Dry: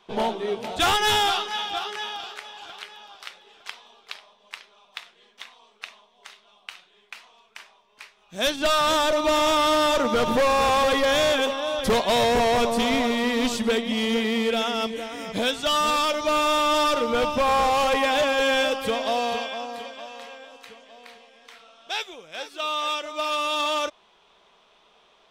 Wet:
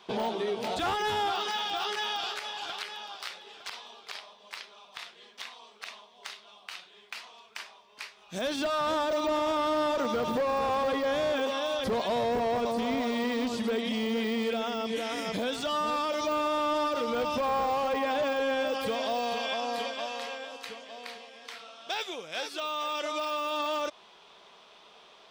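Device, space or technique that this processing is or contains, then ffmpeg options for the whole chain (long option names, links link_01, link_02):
broadcast voice chain: -af "highpass=frequency=110:poles=1,deesser=0.95,acompressor=threshold=-29dB:ratio=3,equalizer=frequency=4700:width_type=o:width=0.43:gain=4.5,alimiter=level_in=2.5dB:limit=-24dB:level=0:latency=1,volume=-2.5dB,volume=3.5dB"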